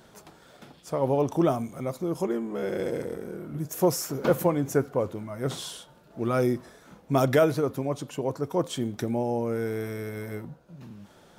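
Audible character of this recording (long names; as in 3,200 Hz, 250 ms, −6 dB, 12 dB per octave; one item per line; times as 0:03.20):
background noise floor −56 dBFS
spectral slope −6.5 dB per octave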